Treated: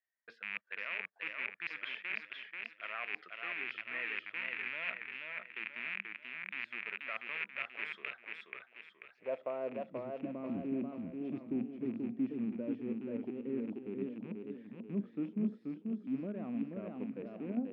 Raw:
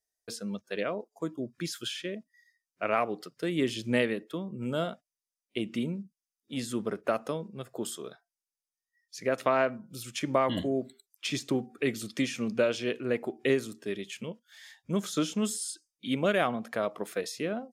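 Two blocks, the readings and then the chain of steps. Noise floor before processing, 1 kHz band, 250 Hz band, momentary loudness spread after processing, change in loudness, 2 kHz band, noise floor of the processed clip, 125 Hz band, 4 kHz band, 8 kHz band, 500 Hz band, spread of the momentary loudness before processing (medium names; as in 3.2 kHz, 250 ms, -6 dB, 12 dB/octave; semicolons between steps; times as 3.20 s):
under -85 dBFS, -14.5 dB, -5.5 dB, 6 LU, -8.0 dB, -1.5 dB, -67 dBFS, -11.0 dB, -12.5 dB, under -40 dB, -13.0 dB, 12 LU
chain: rattle on loud lows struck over -40 dBFS, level -16 dBFS; reverse; compression 6:1, threshold -36 dBFS, peak gain reduction 16 dB; reverse; band-pass sweep 1.9 kHz -> 250 Hz, 8.26–10.20 s; distance through air 360 m; modulated delay 485 ms, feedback 43%, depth 98 cents, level -4 dB; trim +8.5 dB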